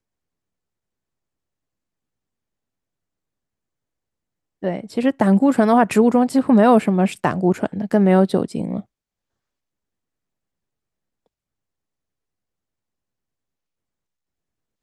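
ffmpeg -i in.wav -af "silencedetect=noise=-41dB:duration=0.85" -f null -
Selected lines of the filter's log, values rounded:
silence_start: 0.00
silence_end: 4.63 | silence_duration: 4.63
silence_start: 8.82
silence_end: 14.82 | silence_duration: 6.01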